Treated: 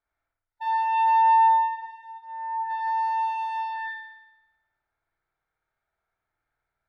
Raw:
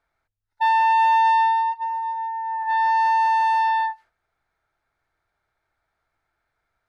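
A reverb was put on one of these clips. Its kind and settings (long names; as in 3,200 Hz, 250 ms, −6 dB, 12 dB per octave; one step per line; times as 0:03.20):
spring reverb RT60 1 s, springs 52 ms, chirp 25 ms, DRR −5 dB
level −13 dB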